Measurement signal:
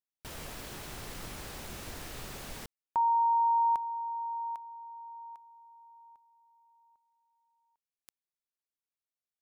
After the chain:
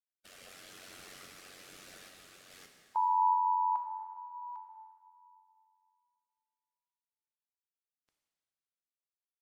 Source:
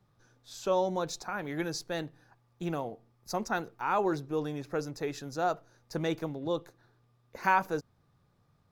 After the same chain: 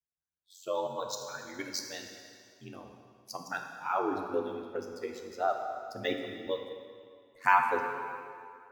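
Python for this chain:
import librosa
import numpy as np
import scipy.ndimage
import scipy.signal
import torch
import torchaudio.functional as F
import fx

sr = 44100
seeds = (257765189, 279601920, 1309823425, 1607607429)

p1 = fx.bin_expand(x, sr, power=2.0)
p2 = fx.highpass(p1, sr, hz=590.0, slope=6)
p3 = p2 * np.sin(2.0 * np.pi * 46.0 * np.arange(len(p2)) / sr)
p4 = fx.level_steps(p3, sr, step_db=22)
p5 = p3 + (p4 * 10.0 ** (2.0 / 20.0))
p6 = fx.tremolo_random(p5, sr, seeds[0], hz=2.4, depth_pct=55)
p7 = fx.rev_plate(p6, sr, seeds[1], rt60_s=2.2, hf_ratio=0.9, predelay_ms=0, drr_db=3.0)
p8 = fx.rider(p7, sr, range_db=10, speed_s=2.0)
p9 = np.interp(np.arange(len(p8)), np.arange(len(p8))[::2], p8[::2])
y = p9 * 10.0 ** (3.0 / 20.0)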